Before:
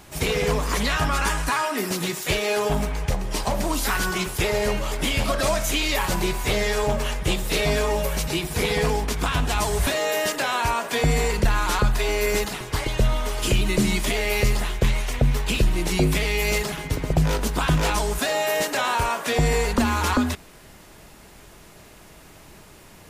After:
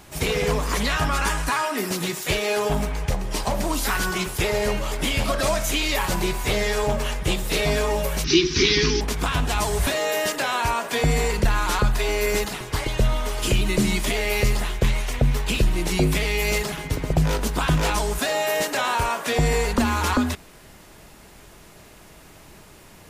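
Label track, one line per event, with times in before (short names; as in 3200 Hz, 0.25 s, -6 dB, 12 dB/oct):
8.240000	9.010000	EQ curve 200 Hz 0 dB, 380 Hz +13 dB, 550 Hz -29 dB, 1100 Hz -2 dB, 6000 Hz +14 dB, 8700 Hz -29 dB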